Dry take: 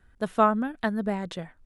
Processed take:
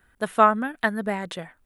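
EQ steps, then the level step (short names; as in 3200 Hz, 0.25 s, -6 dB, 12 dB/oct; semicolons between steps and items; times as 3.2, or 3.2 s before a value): dynamic EQ 1900 Hz, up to +4 dB, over -43 dBFS, Q 2.4; tilt +2.5 dB/oct; bell 5600 Hz -8.5 dB 1.5 oct; +4.5 dB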